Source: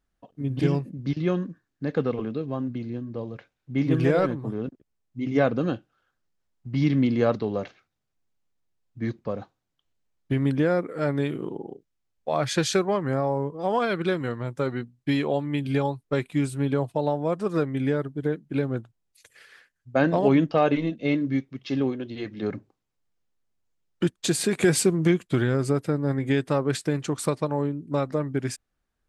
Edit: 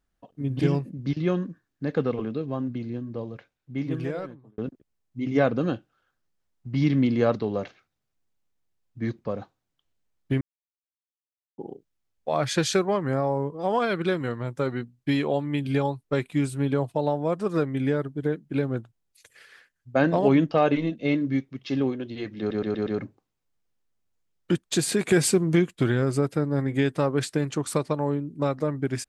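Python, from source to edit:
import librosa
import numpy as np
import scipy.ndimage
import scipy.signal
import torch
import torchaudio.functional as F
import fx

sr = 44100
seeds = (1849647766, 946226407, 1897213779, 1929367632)

y = fx.edit(x, sr, fx.fade_out_span(start_s=3.14, length_s=1.44),
    fx.silence(start_s=10.41, length_s=1.17),
    fx.stutter(start_s=22.39, slice_s=0.12, count=5), tone=tone)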